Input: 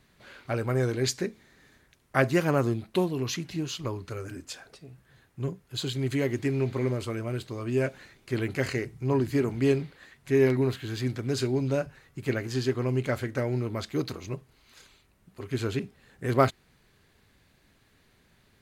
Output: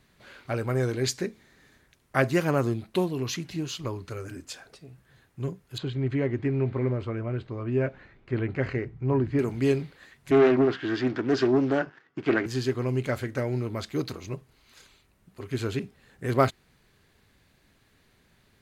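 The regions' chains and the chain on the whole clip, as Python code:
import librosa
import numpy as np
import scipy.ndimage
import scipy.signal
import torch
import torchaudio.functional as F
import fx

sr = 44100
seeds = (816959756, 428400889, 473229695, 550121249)

y = fx.chain(x, sr, fx.lowpass(hz=2100.0, slope=12),
    fx.low_shelf(hz=69.0, db=9.0),
    fx.resample_bad(factor=2, down='none', up='filtered'), at=(5.78, 9.39))
y = fx.chain(y, sr, fx.leveller(passes=2),
    fx.cabinet(low_hz=250.0, low_slope=12, high_hz=4500.0, hz=(320.0, 560.0, 1500.0, 2400.0, 4000.0), db=(6, -7, 4, -6, -10)),
    fx.doppler_dist(depth_ms=0.23), at=(10.31, 12.46))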